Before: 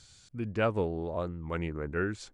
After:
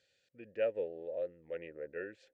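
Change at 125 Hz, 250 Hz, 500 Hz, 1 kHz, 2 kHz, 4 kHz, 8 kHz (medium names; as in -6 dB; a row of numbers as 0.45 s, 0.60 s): -26.5 dB, -17.0 dB, -3.5 dB, -18.5 dB, -11.0 dB, under -10 dB, no reading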